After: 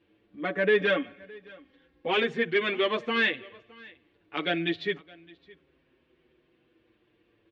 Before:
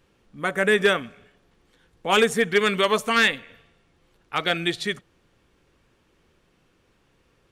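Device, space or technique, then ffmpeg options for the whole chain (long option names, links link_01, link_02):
barber-pole flanger into a guitar amplifier: -filter_complex "[0:a]asplit=2[link_01][link_02];[link_02]adelay=6.4,afreqshift=-0.27[link_03];[link_01][link_03]amix=inputs=2:normalize=1,asoftclip=type=tanh:threshold=-14.5dB,highpass=83,equalizer=frequency=130:width_type=q:width=4:gain=-7,equalizer=frequency=210:width_type=q:width=4:gain=-5,equalizer=frequency=320:width_type=q:width=4:gain=9,equalizer=frequency=870:width_type=q:width=4:gain=-6,equalizer=frequency=1300:width_type=q:width=4:gain=-7,lowpass=frequency=3500:width=0.5412,lowpass=frequency=3500:width=1.3066,asettb=1/sr,asplit=3[link_04][link_05][link_06];[link_04]atrim=end=0.794[link_07];[link_05]atrim=start=0.79:end=2.08,asetpts=PTS-STARTPTS,afade=type=in:duration=0.004:curve=qsin,afade=type=out:start_time=1.286:duration=0.004:curve=qsin,aecho=1:1:3.7:0.6,atrim=end_sample=56889[link_08];[link_06]atrim=start=2.076[link_09];[link_07][link_08]acrossfade=duration=0.004:curve1=hsin:curve2=qsin[link_10];[link_10][link_09]acrossfade=duration=0.004:curve1=qsin:curve2=hsin,aecho=1:1:615:0.0668"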